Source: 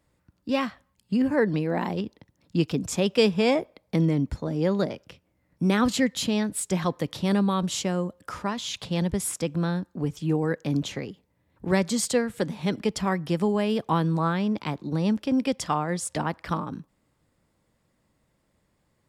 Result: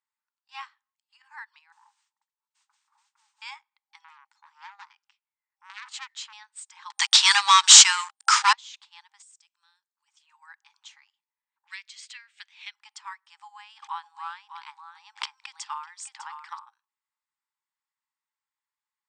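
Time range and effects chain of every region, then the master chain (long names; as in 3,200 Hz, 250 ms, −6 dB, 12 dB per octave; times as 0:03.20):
0:01.72–0:03.42: inverse Chebyshev low-pass filter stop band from 2,800 Hz + downward compressor 2.5 to 1, threshold −38 dBFS + noise that follows the level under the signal 17 dB
0:04.04–0:06.33: high-pass filter 220 Hz 6 dB per octave + dynamic equaliser 1,700 Hz, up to +5 dB, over −42 dBFS, Q 1 + saturating transformer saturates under 2,400 Hz
0:06.90–0:08.53: meter weighting curve ITU-R 468 + leveller curve on the samples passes 5
0:09.22–0:10.08: first difference + notch filter 2,200 Hz, Q 18 + downward compressor 2 to 1, threshold −35 dBFS
0:11.67–0:12.74: high-pass with resonance 2,400 Hz, resonance Q 2 + high-frequency loss of the air 80 metres + multiband upward and downward compressor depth 100%
0:13.42–0:16.59: single-tap delay 601 ms −8 dB + level that may fall only so fast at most 33 dB per second
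whole clip: brick-wall band-pass 800–8,900 Hz; expander for the loud parts 1.5 to 1, over −45 dBFS; level +1 dB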